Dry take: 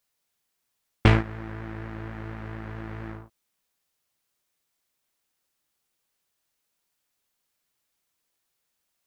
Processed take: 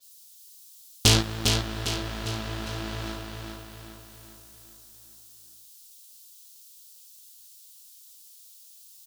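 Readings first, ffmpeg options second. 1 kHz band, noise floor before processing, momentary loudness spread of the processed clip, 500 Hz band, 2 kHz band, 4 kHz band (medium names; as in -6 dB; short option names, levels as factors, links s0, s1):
-0.5 dB, -79 dBFS, 23 LU, +0.5 dB, +0.5 dB, +15.0 dB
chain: -af "asoftclip=type=tanh:threshold=0.1,aexciter=amount=7.5:drive=8.4:freq=3100,aecho=1:1:403|806|1209|1612|2015|2418:0.596|0.292|0.143|0.0701|0.0343|0.0168,adynamicequalizer=threshold=0.00141:dfrequency=5100:dqfactor=0.7:tfrequency=5100:tqfactor=0.7:attack=5:release=100:ratio=0.375:range=2.5:mode=cutabove:tftype=highshelf,volume=1.41"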